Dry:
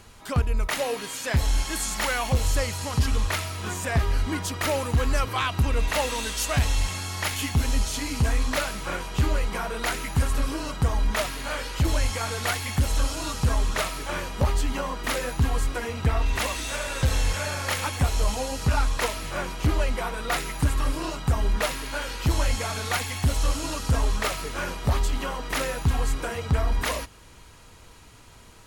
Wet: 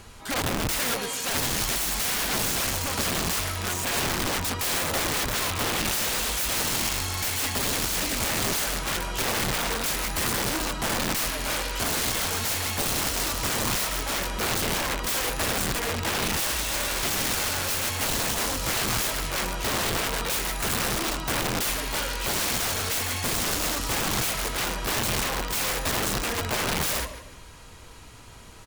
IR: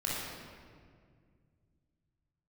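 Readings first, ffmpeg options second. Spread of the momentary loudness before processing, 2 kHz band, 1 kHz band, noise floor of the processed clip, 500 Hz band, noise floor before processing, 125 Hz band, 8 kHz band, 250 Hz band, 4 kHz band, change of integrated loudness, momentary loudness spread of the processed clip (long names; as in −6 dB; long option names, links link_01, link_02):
5 LU, +2.0 dB, +0.5 dB, −44 dBFS, −1.0 dB, −49 dBFS, −8.0 dB, +6.5 dB, −1.0 dB, +5.0 dB, +1.5 dB, 3 LU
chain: -af "aecho=1:1:150|300|450:0.224|0.0694|0.0215,aeval=exprs='(mod(16.8*val(0)+1,2)-1)/16.8':channel_layout=same,volume=3dB"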